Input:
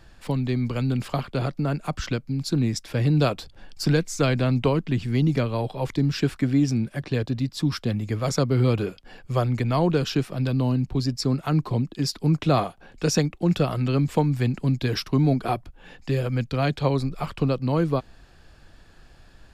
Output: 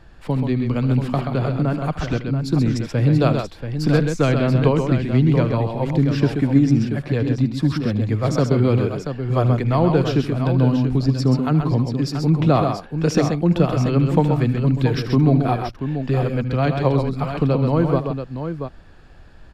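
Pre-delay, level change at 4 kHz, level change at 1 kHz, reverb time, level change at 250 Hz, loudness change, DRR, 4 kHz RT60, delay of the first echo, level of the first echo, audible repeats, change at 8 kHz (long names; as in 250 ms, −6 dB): no reverb audible, −1.0 dB, +4.5 dB, no reverb audible, +5.5 dB, +5.0 dB, no reverb audible, no reverb audible, 76 ms, −15.5 dB, 3, can't be measured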